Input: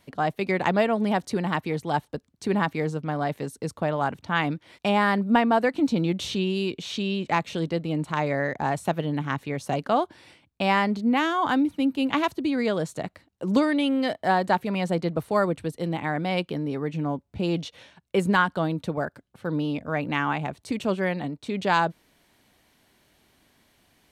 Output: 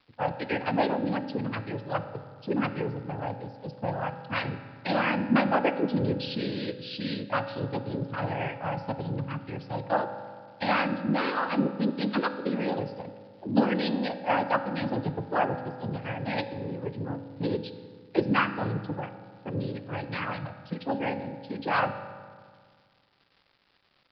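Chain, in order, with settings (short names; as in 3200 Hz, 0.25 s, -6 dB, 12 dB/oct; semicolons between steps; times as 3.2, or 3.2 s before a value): per-bin expansion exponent 1.5; noise vocoder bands 8; crackle 390/s -47 dBFS; downsampling 11025 Hz; on a send: reverb RT60 1.8 s, pre-delay 3 ms, DRR 9 dB; on the sum: gain -1.5 dB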